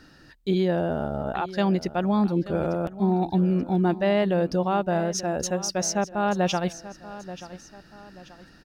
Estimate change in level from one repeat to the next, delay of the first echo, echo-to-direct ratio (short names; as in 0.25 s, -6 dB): -7.5 dB, 0.883 s, -15.0 dB